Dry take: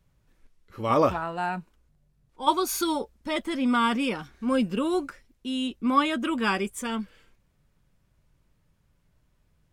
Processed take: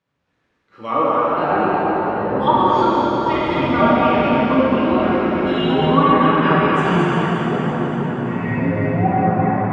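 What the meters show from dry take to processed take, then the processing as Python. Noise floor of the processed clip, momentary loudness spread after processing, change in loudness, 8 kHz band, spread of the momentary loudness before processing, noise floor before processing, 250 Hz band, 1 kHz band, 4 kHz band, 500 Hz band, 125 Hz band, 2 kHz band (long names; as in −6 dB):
−69 dBFS, 6 LU, +9.5 dB, below −10 dB, 10 LU, −68 dBFS, +10.5 dB, +12.5 dB, +5.0 dB, +13.0 dB, +19.5 dB, +10.0 dB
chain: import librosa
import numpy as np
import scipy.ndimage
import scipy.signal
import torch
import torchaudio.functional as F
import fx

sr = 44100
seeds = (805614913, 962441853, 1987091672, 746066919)

y = fx.rider(x, sr, range_db=10, speed_s=2.0)
y = scipy.signal.sosfilt(scipy.signal.butter(2, 160.0, 'highpass', fs=sr, output='sos'), y)
y = fx.env_lowpass_down(y, sr, base_hz=1300.0, full_db=-19.0)
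y = scipy.signal.sosfilt(scipy.signal.butter(2, 4500.0, 'lowpass', fs=sr, output='sos'), y)
y = fx.low_shelf(y, sr, hz=220.0, db=-6.0)
y = y + 10.0 ** (-6.0 / 20.0) * np.pad(y, (int(223 * sr / 1000.0), 0))[:len(y)]
y = fx.rev_plate(y, sr, seeds[0], rt60_s=4.6, hf_ratio=0.95, predelay_ms=0, drr_db=-7.5)
y = fx.echo_pitch(y, sr, ms=92, semitones=-7, count=3, db_per_echo=-3.0)
y = fx.peak_eq(y, sr, hz=1500.0, db=2.5, octaves=1.5)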